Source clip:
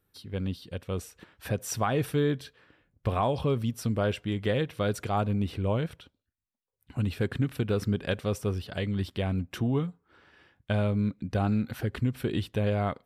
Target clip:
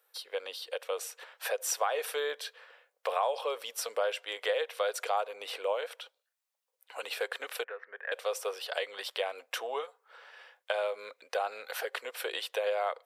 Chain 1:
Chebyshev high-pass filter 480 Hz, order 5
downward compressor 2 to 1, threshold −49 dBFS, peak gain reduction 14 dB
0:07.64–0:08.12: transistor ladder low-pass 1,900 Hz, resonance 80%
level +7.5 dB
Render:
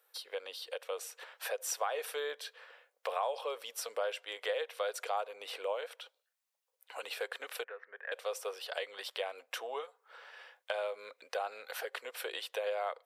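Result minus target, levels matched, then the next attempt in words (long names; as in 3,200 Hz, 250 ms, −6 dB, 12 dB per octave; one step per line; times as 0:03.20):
downward compressor: peak gain reduction +4.5 dB
Chebyshev high-pass filter 480 Hz, order 5
downward compressor 2 to 1, threshold −40 dBFS, peak gain reduction 9.5 dB
0:07.64–0:08.12: transistor ladder low-pass 1,900 Hz, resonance 80%
level +7.5 dB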